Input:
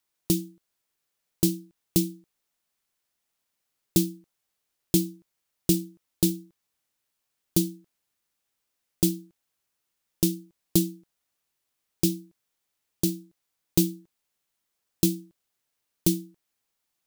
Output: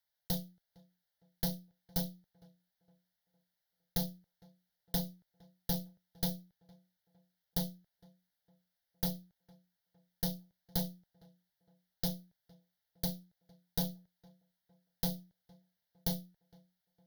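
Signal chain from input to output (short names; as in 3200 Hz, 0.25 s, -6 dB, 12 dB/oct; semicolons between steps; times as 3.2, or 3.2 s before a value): block floating point 7-bit; tube stage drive 23 dB, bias 0.65; fixed phaser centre 1700 Hz, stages 8; tape echo 0.459 s, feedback 45%, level -23 dB, low-pass 1600 Hz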